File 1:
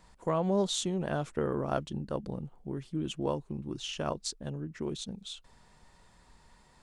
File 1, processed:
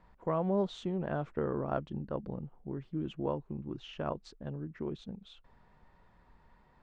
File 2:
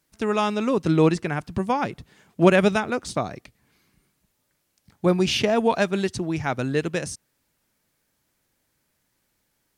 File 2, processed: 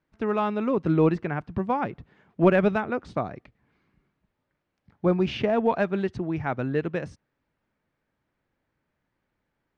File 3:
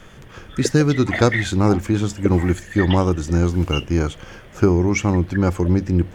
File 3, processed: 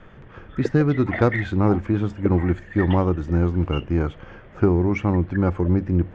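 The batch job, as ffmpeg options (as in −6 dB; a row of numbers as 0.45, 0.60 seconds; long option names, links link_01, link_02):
-filter_complex "[0:a]lowpass=2000,asplit=2[link_01][link_02];[link_02]aeval=exprs='clip(val(0),-1,0.178)':channel_layout=same,volume=-10dB[link_03];[link_01][link_03]amix=inputs=2:normalize=0,volume=-4.5dB"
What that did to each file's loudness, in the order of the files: −2.5, −3.0, −2.5 LU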